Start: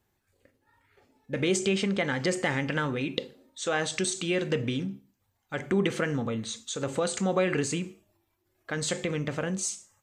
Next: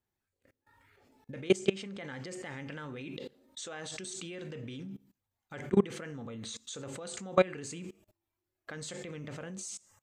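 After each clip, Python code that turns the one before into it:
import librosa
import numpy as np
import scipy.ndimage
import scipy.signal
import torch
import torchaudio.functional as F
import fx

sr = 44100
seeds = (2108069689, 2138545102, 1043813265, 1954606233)

y = fx.level_steps(x, sr, step_db=23)
y = y * librosa.db_to_amplitude(4.0)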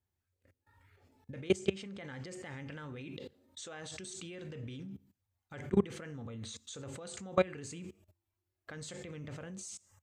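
y = fx.peak_eq(x, sr, hz=83.0, db=14.0, octaves=0.82)
y = y * librosa.db_to_amplitude(-4.0)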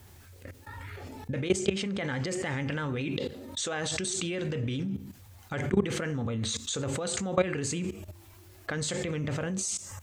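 y = fx.vibrato(x, sr, rate_hz=9.7, depth_cents=31.0)
y = fx.env_flatten(y, sr, amount_pct=50)
y = y * librosa.db_to_amplitude(1.5)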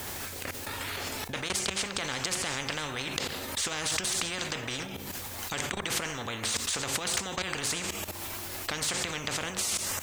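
y = 10.0 ** (-16.5 / 20.0) * np.tanh(x / 10.0 ** (-16.5 / 20.0))
y = fx.spectral_comp(y, sr, ratio=4.0)
y = y * librosa.db_to_amplitude(6.0)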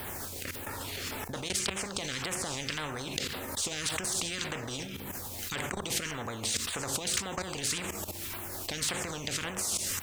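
y = fx.filter_lfo_notch(x, sr, shape='saw_down', hz=1.8, low_hz=580.0, high_hz=7300.0, q=0.71)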